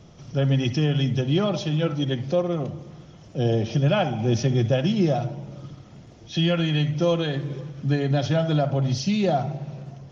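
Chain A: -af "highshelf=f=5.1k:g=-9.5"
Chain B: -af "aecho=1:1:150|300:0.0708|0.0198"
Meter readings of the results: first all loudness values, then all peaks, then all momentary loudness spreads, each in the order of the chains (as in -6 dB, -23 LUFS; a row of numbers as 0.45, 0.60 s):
-24.0, -23.5 LUFS; -9.5, -10.0 dBFS; 12, 12 LU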